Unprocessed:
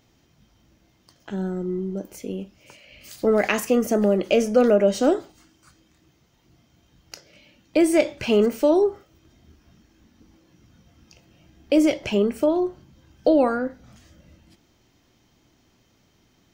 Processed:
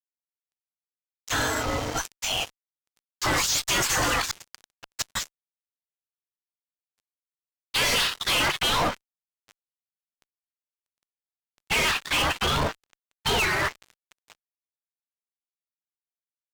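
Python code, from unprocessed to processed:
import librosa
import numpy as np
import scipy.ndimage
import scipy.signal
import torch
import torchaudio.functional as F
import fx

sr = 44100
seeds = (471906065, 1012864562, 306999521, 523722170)

y = fx.spec_gate(x, sr, threshold_db=-30, keep='weak')
y = fx.gate_flip(y, sr, shuts_db=-33.0, range_db=-29, at=(4.23, 5.15), fade=0.02)
y = fx.filter_sweep_lowpass(y, sr, from_hz=7200.0, to_hz=2700.0, start_s=5.9, end_s=9.01, q=2.1)
y = fx.fuzz(y, sr, gain_db=54.0, gate_db=-60.0)
y = np.interp(np.arange(len(y)), np.arange(len(y))[::2], y[::2])
y = F.gain(torch.from_numpy(y), -8.0).numpy()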